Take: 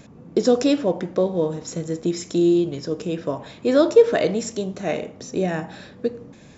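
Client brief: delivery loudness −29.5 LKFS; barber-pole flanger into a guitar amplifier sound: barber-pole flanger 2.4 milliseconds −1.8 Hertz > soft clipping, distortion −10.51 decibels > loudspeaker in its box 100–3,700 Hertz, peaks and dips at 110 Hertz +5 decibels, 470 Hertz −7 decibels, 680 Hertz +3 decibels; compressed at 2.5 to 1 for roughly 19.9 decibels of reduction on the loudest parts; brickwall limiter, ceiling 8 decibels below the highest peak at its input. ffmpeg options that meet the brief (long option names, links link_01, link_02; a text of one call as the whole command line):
ffmpeg -i in.wav -filter_complex "[0:a]acompressor=threshold=-39dB:ratio=2.5,alimiter=level_in=4.5dB:limit=-24dB:level=0:latency=1,volume=-4.5dB,asplit=2[link_01][link_02];[link_02]adelay=2.4,afreqshift=-1.8[link_03];[link_01][link_03]amix=inputs=2:normalize=1,asoftclip=threshold=-39.5dB,highpass=100,equalizer=frequency=110:width_type=q:width=4:gain=5,equalizer=frequency=470:width_type=q:width=4:gain=-7,equalizer=frequency=680:width_type=q:width=4:gain=3,lowpass=frequency=3700:width=0.5412,lowpass=frequency=3700:width=1.3066,volume=18dB" out.wav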